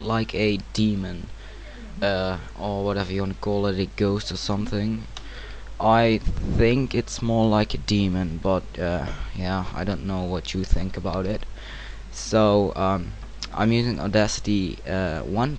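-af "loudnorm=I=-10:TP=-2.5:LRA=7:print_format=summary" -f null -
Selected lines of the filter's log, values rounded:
Input Integrated:    -24.4 LUFS
Input True Peak:      -4.7 dBTP
Input LRA:             4.0 LU
Input Threshold:     -34.8 LUFS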